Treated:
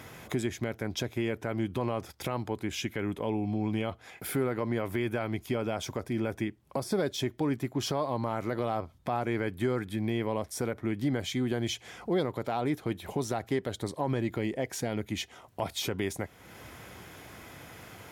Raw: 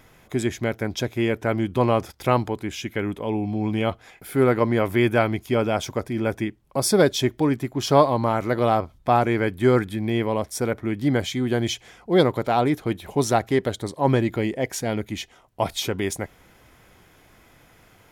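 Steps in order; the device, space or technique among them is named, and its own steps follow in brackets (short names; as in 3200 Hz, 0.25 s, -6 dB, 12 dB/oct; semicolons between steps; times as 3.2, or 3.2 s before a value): podcast mastering chain (HPF 63 Hz 24 dB/oct; de-esser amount 55%; compressor 2:1, threshold -44 dBFS, peak gain reduction 18 dB; limiter -25.5 dBFS, peak gain reduction 7 dB; gain +7 dB; MP3 96 kbps 48000 Hz)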